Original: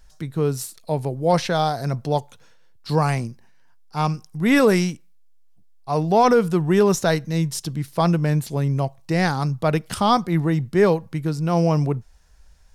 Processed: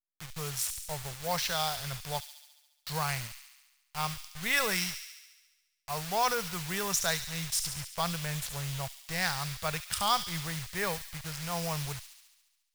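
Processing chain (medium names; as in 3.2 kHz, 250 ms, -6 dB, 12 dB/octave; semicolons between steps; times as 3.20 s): send-on-delta sampling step -29.5 dBFS; amplifier tone stack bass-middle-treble 10-0-10; on a send: feedback echo behind a high-pass 70 ms, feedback 67%, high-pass 2.8 kHz, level -7 dB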